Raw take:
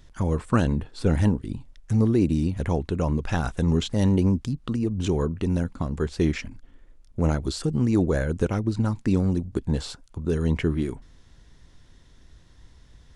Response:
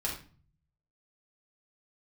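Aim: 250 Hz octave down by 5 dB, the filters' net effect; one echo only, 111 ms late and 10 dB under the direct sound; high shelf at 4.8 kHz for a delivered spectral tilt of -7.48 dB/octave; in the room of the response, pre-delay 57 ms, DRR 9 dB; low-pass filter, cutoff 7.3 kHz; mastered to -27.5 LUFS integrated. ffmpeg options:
-filter_complex "[0:a]lowpass=7300,equalizer=f=250:t=o:g=-7,highshelf=f=4800:g=-5.5,aecho=1:1:111:0.316,asplit=2[s0][s1];[1:a]atrim=start_sample=2205,adelay=57[s2];[s1][s2]afir=irnorm=-1:irlink=0,volume=0.224[s3];[s0][s3]amix=inputs=2:normalize=0,volume=0.841"

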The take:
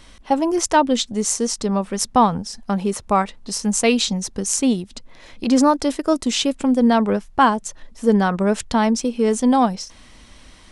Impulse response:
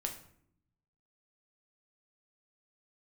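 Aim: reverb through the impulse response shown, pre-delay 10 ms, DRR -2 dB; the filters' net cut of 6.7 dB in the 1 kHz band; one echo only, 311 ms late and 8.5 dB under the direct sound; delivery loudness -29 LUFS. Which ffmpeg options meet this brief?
-filter_complex "[0:a]equalizer=f=1000:t=o:g=-8.5,aecho=1:1:311:0.376,asplit=2[s0][s1];[1:a]atrim=start_sample=2205,adelay=10[s2];[s1][s2]afir=irnorm=-1:irlink=0,volume=1.19[s3];[s0][s3]amix=inputs=2:normalize=0,volume=0.237"

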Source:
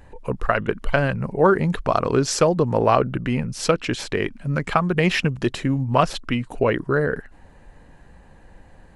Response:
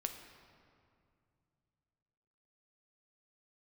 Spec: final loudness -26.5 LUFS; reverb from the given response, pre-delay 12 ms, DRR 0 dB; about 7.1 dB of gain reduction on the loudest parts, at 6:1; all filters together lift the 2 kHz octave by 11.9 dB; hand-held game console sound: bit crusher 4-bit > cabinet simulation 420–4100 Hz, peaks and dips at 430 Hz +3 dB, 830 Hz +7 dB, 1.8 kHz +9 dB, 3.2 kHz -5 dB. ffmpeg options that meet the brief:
-filter_complex "[0:a]equalizer=f=2000:t=o:g=8.5,acompressor=threshold=0.126:ratio=6,asplit=2[s0][s1];[1:a]atrim=start_sample=2205,adelay=12[s2];[s1][s2]afir=irnorm=-1:irlink=0,volume=1.06[s3];[s0][s3]amix=inputs=2:normalize=0,acrusher=bits=3:mix=0:aa=0.000001,highpass=420,equalizer=f=430:t=q:w=4:g=3,equalizer=f=830:t=q:w=4:g=7,equalizer=f=1800:t=q:w=4:g=9,equalizer=f=3200:t=q:w=4:g=-5,lowpass=f=4100:w=0.5412,lowpass=f=4100:w=1.3066,volume=0.422"

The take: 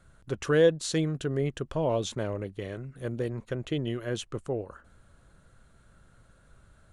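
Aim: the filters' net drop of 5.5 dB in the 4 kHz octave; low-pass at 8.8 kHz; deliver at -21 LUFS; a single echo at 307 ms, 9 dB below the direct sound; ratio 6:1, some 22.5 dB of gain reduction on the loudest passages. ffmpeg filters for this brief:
-af "lowpass=8800,equalizer=f=4000:t=o:g=-7,acompressor=threshold=0.00794:ratio=6,aecho=1:1:307:0.355,volume=16.8"

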